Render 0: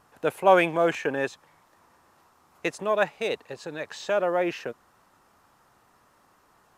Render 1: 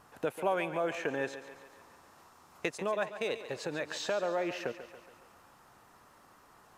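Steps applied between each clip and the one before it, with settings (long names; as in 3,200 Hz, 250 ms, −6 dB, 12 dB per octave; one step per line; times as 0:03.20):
downward compressor 3 to 1, threshold −34 dBFS, peak gain reduction 16 dB
feedback echo with a high-pass in the loop 140 ms, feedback 57%, high-pass 190 Hz, level −12 dB
level +1.5 dB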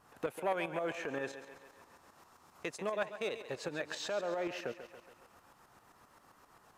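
shaped tremolo saw up 7.6 Hz, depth 60%
saturating transformer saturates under 750 Hz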